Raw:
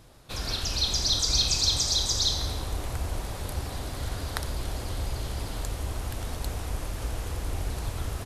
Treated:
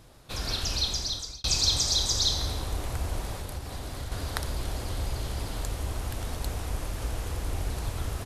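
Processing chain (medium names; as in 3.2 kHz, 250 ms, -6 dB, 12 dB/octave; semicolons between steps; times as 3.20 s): 0.72–1.44 s: fade out; 3.34–4.12 s: compression, threshold -32 dBFS, peak gain reduction 7 dB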